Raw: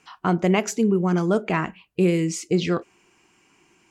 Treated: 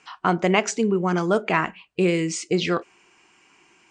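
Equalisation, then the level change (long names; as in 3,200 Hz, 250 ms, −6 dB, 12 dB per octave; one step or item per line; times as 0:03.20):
elliptic low-pass filter 9,000 Hz, stop band 40 dB
low-shelf EQ 410 Hz −10.5 dB
high-shelf EQ 4,500 Hz −6 dB
+6.5 dB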